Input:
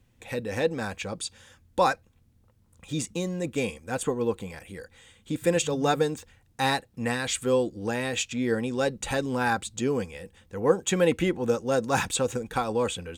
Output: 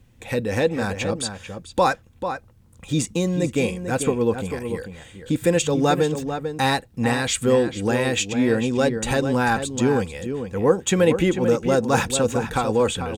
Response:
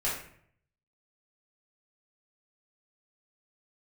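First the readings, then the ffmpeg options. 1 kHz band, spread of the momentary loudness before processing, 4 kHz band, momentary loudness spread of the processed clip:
+5.0 dB, 11 LU, +5.0 dB, 10 LU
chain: -filter_complex "[0:a]lowshelf=frequency=350:gain=3.5,asplit=2[link_01][link_02];[link_02]alimiter=limit=-18.5dB:level=0:latency=1:release=287,volume=0dB[link_03];[link_01][link_03]amix=inputs=2:normalize=0,asplit=2[link_04][link_05];[link_05]adelay=443.1,volume=-8dB,highshelf=frequency=4000:gain=-9.97[link_06];[link_04][link_06]amix=inputs=2:normalize=0"

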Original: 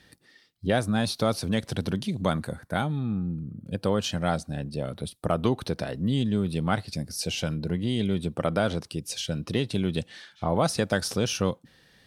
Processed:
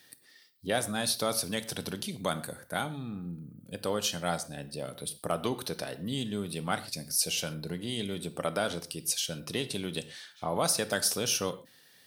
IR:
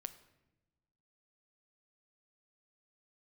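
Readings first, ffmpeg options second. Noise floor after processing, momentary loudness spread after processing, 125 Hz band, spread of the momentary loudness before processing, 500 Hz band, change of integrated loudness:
−60 dBFS, 11 LU, −11.0 dB, 8 LU, −5.0 dB, −4.0 dB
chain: -filter_complex "[0:a]aemphasis=mode=production:type=bsi[link_01];[1:a]atrim=start_sample=2205,atrim=end_sample=6174[link_02];[link_01][link_02]afir=irnorm=-1:irlink=0"

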